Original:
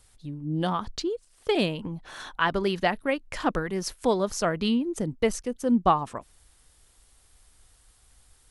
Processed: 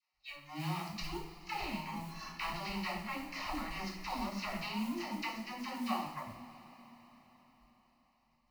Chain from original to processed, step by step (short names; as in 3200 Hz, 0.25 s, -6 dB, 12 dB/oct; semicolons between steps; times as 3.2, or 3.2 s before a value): spectral whitening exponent 0.3; 4.5–5.93 elliptic high-pass 200 Hz; spectral noise reduction 23 dB; LPF 4300 Hz 24 dB/oct; compressor 6:1, threshold -35 dBFS, peak gain reduction 17.5 dB; fixed phaser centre 2300 Hz, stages 8; dispersion lows, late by 0.144 s, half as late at 430 Hz; modulation noise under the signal 20 dB; two-slope reverb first 0.55 s, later 5 s, from -18 dB, DRR -1.5 dB